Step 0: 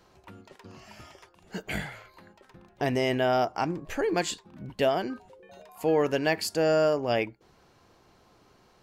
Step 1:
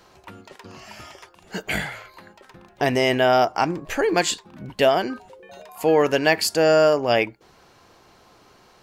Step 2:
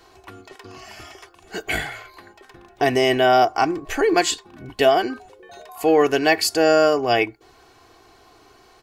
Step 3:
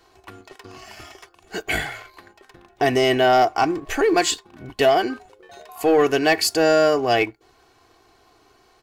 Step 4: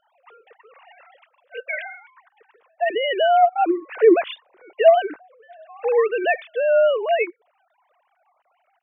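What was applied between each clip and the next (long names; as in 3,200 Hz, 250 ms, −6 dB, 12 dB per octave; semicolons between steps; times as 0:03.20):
low-shelf EQ 410 Hz −6 dB; level +9 dB
comb filter 2.7 ms, depth 64%
leveller curve on the samples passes 1; level −3 dB
three sine waves on the formant tracks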